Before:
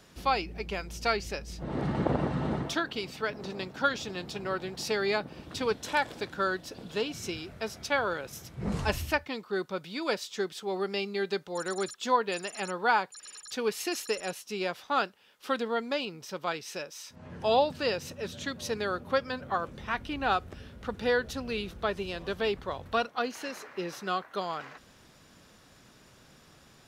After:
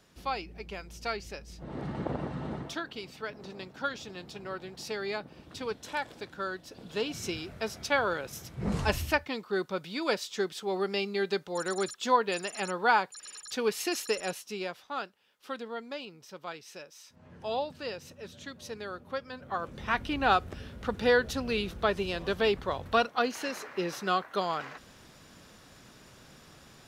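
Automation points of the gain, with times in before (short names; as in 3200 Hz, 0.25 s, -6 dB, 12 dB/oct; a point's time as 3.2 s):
6.65 s -6 dB
7.13 s +1 dB
14.35 s +1 dB
14.89 s -8 dB
19.3 s -8 dB
19.9 s +3 dB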